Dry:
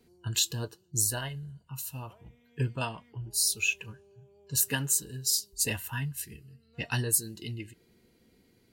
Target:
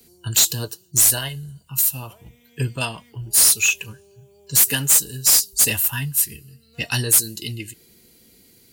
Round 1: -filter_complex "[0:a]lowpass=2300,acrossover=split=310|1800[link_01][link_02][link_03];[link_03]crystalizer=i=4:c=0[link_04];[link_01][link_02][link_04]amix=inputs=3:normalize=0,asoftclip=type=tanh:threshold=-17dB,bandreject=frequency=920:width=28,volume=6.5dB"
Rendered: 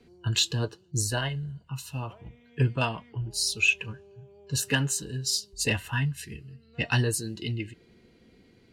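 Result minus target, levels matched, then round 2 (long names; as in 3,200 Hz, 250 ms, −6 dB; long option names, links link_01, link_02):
2,000 Hz band +8.5 dB
-filter_complex "[0:a]acrossover=split=310|1800[link_01][link_02][link_03];[link_03]crystalizer=i=4:c=0[link_04];[link_01][link_02][link_04]amix=inputs=3:normalize=0,asoftclip=type=tanh:threshold=-17dB,bandreject=frequency=920:width=28,volume=6.5dB"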